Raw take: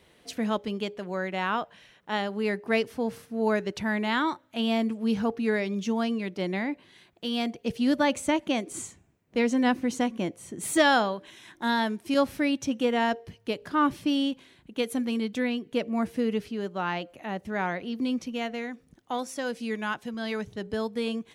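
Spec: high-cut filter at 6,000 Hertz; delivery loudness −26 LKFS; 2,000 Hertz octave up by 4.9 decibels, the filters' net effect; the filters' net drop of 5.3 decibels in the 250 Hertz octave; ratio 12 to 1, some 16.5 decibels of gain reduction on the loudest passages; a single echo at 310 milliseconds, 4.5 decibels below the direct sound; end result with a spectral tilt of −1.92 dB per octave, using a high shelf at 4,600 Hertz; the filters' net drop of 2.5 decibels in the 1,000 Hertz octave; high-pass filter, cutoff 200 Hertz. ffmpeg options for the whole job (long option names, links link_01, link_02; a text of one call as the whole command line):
ffmpeg -i in.wav -af "highpass=200,lowpass=6000,equalizer=frequency=250:width_type=o:gain=-4,equalizer=frequency=1000:width_type=o:gain=-5,equalizer=frequency=2000:width_type=o:gain=8.5,highshelf=frequency=4600:gain=-4.5,acompressor=threshold=-32dB:ratio=12,aecho=1:1:310:0.596,volume=10.5dB" out.wav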